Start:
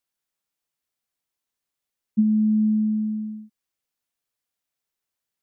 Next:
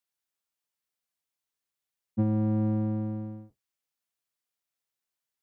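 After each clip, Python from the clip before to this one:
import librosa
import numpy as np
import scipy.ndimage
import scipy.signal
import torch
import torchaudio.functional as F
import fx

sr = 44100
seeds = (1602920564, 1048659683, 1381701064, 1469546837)

y = fx.octave_divider(x, sr, octaves=1, level_db=4.0)
y = fx.low_shelf(y, sr, hz=230.0, db=-12.0)
y = y * 10.0 ** (-3.5 / 20.0)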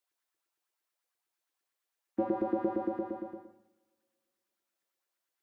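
y = fx.filter_lfo_highpass(x, sr, shape='saw_up', hz=8.7, low_hz=330.0, high_hz=1800.0, q=3.7)
y = fx.rev_double_slope(y, sr, seeds[0], early_s=0.87, late_s=2.7, knee_db=-27, drr_db=5.5)
y = y * 10.0 ** (-1.0 / 20.0)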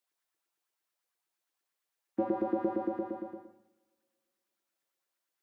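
y = scipy.signal.sosfilt(scipy.signal.butter(2, 89.0, 'highpass', fs=sr, output='sos'), x)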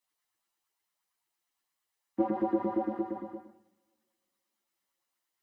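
y = x + 0.33 * np.pad(x, (int(1.0 * sr / 1000.0), 0))[:len(x)]
y = fx.ensemble(y, sr)
y = y * 10.0 ** (4.5 / 20.0)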